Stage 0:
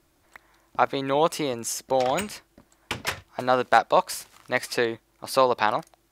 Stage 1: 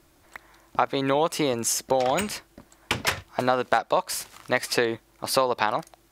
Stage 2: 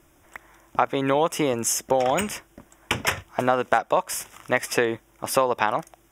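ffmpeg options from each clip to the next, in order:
-af "acompressor=threshold=-24dB:ratio=5,volume=5.5dB"
-af "asuperstop=centerf=4300:order=4:qfactor=2.6,volume=1.5dB"

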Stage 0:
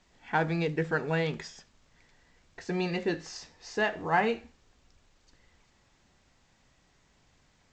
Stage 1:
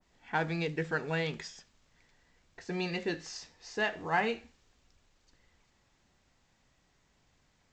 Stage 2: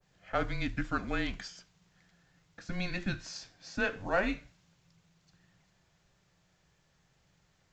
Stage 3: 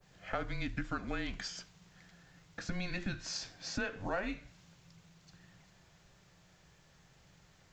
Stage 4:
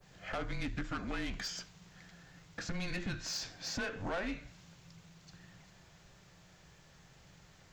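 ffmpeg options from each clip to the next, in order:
-af "adynamicequalizer=threshold=0.00708:dfrequency=1700:dqfactor=0.7:tfrequency=1700:tqfactor=0.7:attack=5:release=100:ratio=0.375:range=2.5:mode=boostabove:tftype=highshelf,volume=-4.5dB"
-af "afreqshift=-190"
-af "acompressor=threshold=-42dB:ratio=4,volume=6.5dB"
-af "asoftclip=type=tanh:threshold=-35.5dB,volume=3.5dB"

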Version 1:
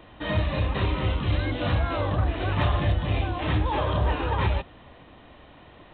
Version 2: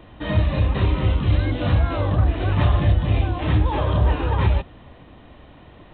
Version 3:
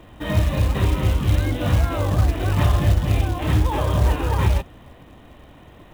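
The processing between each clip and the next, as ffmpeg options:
-af "lowshelf=f=360:g=7"
-af "acrusher=bits=5:mode=log:mix=0:aa=0.000001"

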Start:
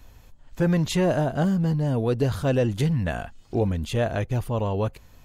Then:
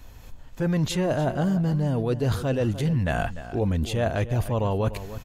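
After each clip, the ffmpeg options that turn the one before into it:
-filter_complex "[0:a]areverse,acompressor=threshold=-31dB:ratio=12,areverse,asplit=2[a][b];[b]adelay=297.4,volume=-13dB,highshelf=f=4k:g=-6.69[c];[a][c]amix=inputs=2:normalize=0,dynaudnorm=f=190:g=3:m=7dB,volume=3dB"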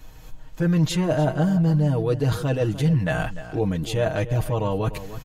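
-af "aecho=1:1:6.4:0.73"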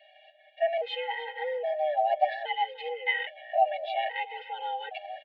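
-af "asuperstop=centerf=810:order=8:qfactor=0.87,highpass=f=300:t=q:w=0.5412,highpass=f=300:t=q:w=1.307,lowpass=f=2.8k:t=q:w=0.5176,lowpass=f=2.8k:t=q:w=0.7071,lowpass=f=2.8k:t=q:w=1.932,afreqshift=320,afftfilt=real='re*gt(sin(2*PI*0.61*pts/sr)*(1-2*mod(floor(b*sr/1024/270),2)),0)':imag='im*gt(sin(2*PI*0.61*pts/sr)*(1-2*mod(floor(b*sr/1024/270),2)),0)':win_size=1024:overlap=0.75,volume=5dB"

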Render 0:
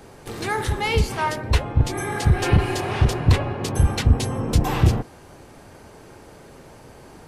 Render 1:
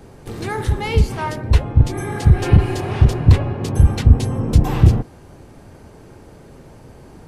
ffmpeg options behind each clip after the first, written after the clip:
-af "lowshelf=f=390:g=9.5,volume=-3dB"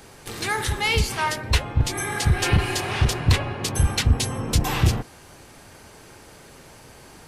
-af "tiltshelf=f=930:g=-8.5"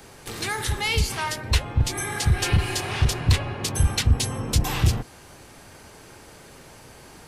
-filter_complex "[0:a]acrossover=split=140|3000[a][b][c];[b]acompressor=threshold=-33dB:ratio=1.5[d];[a][d][c]amix=inputs=3:normalize=0"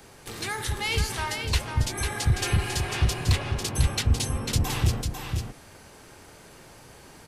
-af "aecho=1:1:497:0.501,volume=-3.5dB"

